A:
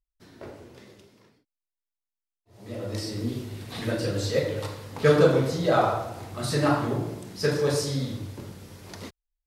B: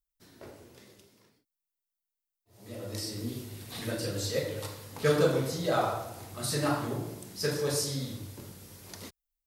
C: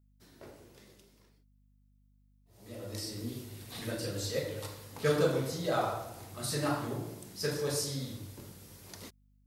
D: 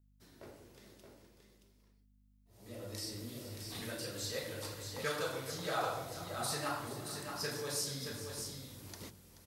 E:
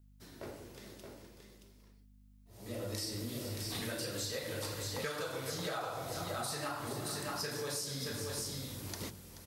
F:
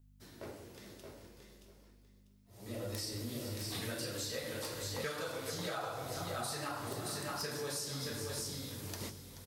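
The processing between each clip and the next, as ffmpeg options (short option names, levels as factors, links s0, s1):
-af "aemphasis=mode=production:type=50kf,volume=0.473"
-af "aeval=exprs='val(0)+0.000794*(sin(2*PI*50*n/s)+sin(2*PI*2*50*n/s)/2+sin(2*PI*3*50*n/s)/3+sin(2*PI*4*50*n/s)/4+sin(2*PI*5*50*n/s)/5)':c=same,volume=0.708"
-filter_complex "[0:a]acrossover=split=690[s0][s1];[s0]acompressor=threshold=0.00891:ratio=6[s2];[s2][s1]amix=inputs=2:normalize=0,aecho=1:1:430|624:0.188|0.473,volume=0.794"
-af "acompressor=threshold=0.00794:ratio=12,volume=2.24"
-af "aeval=exprs='(mod(18.8*val(0)+1,2)-1)/18.8':c=same,flanger=delay=7.2:depth=7.7:regen=-58:speed=0.32:shape=triangular,aecho=1:1:646:0.224,volume=1.41"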